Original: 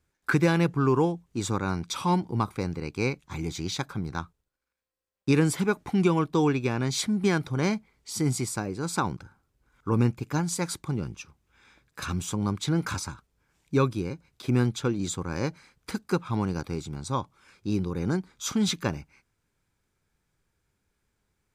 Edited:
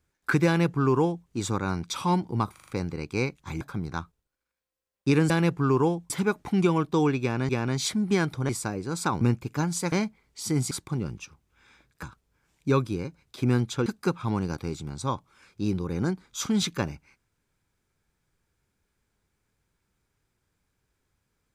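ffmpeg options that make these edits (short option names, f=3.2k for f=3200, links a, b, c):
-filter_complex "[0:a]asplit=15[a][b][c][d][e][f][g][h][i][j][k][l][m][n][o];[a]atrim=end=2.562[p];[b]atrim=start=2.518:end=2.562[q];[c]atrim=start=2.518:end=2.562[r];[d]atrim=start=2.518:end=2.562[s];[e]atrim=start=2.518:end=3.452[t];[f]atrim=start=3.818:end=5.512[u];[g]atrim=start=0.468:end=1.272[v];[h]atrim=start=5.508:end=6.902[w];[i]atrim=start=6.618:end=7.622[x];[j]atrim=start=8.408:end=9.132[y];[k]atrim=start=9.968:end=10.682[z];[l]atrim=start=7.618:end=8.412[aa];[m]atrim=start=10.678:end=12.002[ab];[n]atrim=start=13.088:end=14.922[ac];[o]atrim=start=15.918[ad];[p][q]acrossfade=d=0.004:c1=hsin:c2=hsin[ae];[ae][r]acrossfade=d=0.004:c1=hsin:c2=hsin[af];[af][s]acrossfade=d=0.004:c1=hsin:c2=hsin[ag];[ag][t]acrossfade=d=0.004:c1=hsin:c2=hsin[ah];[ah][u]acrossfade=d=0.004:c1=hsin:c2=hsin[ai];[ai][v]acrossfade=d=0.004:c1=hsin:c2=hsin[aj];[aj][w]acrossfade=d=0.004:c1=hsin:c2=hsin[ak];[ak][x]acrossfade=d=0.004:c1=hsin:c2=hsin[al];[al][y]acrossfade=d=0.004:c1=hsin:c2=hsin[am];[am][z]acrossfade=d=0.004:c1=hsin:c2=hsin[an];[an][aa]acrossfade=d=0.004:c1=hsin:c2=hsin[ao];[ao][ab]acrossfade=d=0.004:c1=hsin:c2=hsin[ap];[ap][ac]acrossfade=d=0.004:c1=hsin:c2=hsin[aq];[aq][ad]acrossfade=d=0.004:c1=hsin:c2=hsin"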